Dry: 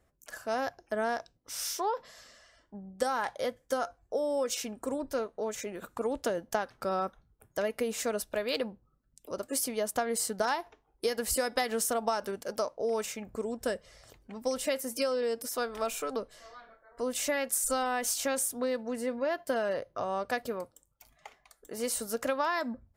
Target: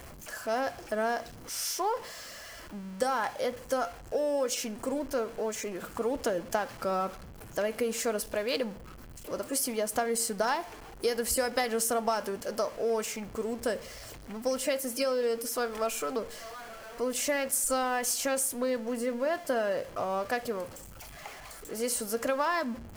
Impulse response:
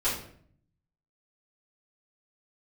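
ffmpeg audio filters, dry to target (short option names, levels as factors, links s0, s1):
-filter_complex "[0:a]aeval=exprs='val(0)+0.5*0.00841*sgn(val(0))':c=same,bandreject=f=3700:w=13,asplit=2[s0][s1];[1:a]atrim=start_sample=2205[s2];[s1][s2]afir=irnorm=-1:irlink=0,volume=0.0562[s3];[s0][s3]amix=inputs=2:normalize=0"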